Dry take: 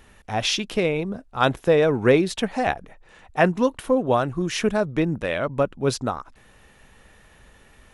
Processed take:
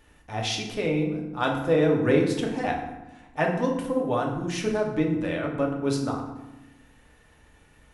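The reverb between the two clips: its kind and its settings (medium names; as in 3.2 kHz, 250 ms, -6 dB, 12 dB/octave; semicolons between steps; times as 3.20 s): FDN reverb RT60 1 s, low-frequency decay 1.55×, high-frequency decay 0.65×, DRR -0.5 dB; trim -8 dB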